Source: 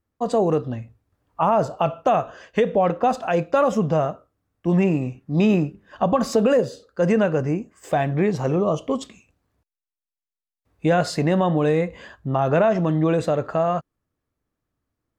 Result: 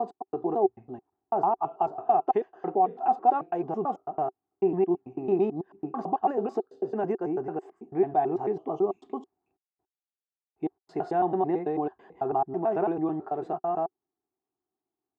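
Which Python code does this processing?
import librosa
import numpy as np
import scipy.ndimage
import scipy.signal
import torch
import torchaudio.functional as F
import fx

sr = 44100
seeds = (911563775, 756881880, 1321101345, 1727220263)

y = fx.block_reorder(x, sr, ms=110.0, group=3)
y = fx.double_bandpass(y, sr, hz=540.0, octaves=1.0)
y = y * librosa.db_to_amplitude(2.5)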